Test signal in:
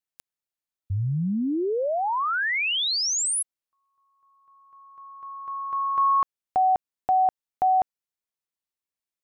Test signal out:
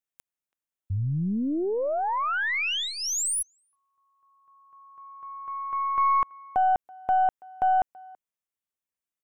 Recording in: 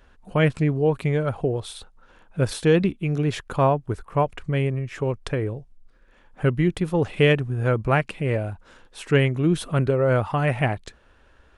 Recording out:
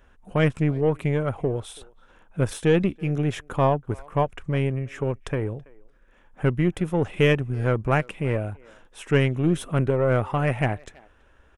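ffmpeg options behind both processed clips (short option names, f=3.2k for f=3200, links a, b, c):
-filter_complex "[0:a]aeval=exprs='0.501*(cos(1*acos(clip(val(0)/0.501,-1,1)))-cos(1*PI/2))+0.0158*(cos(4*acos(clip(val(0)/0.501,-1,1)))-cos(4*PI/2))+0.0112*(cos(8*acos(clip(val(0)/0.501,-1,1)))-cos(8*PI/2))':c=same,equalizer=f=4.4k:t=o:w=0.36:g=-11,asplit=2[a][b];[b]adelay=330,highpass=300,lowpass=3.4k,asoftclip=type=hard:threshold=-13dB,volume=-24dB[c];[a][c]amix=inputs=2:normalize=0,volume=-1.5dB"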